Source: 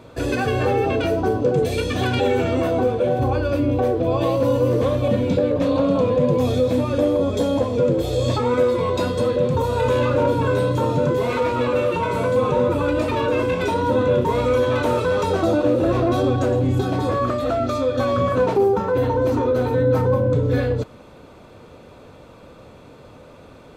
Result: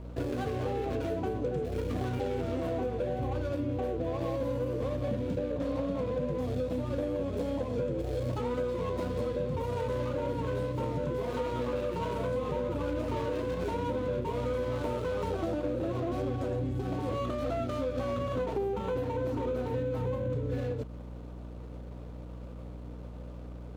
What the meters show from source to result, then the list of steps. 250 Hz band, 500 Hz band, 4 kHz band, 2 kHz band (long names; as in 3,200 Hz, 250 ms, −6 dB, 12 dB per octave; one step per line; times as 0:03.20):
−12.5 dB, −13.0 dB, −15.5 dB, −15.5 dB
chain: running median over 25 samples
downward compressor, threshold −24 dBFS, peak gain reduction 10 dB
mains hum 60 Hz, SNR 10 dB
level −5.5 dB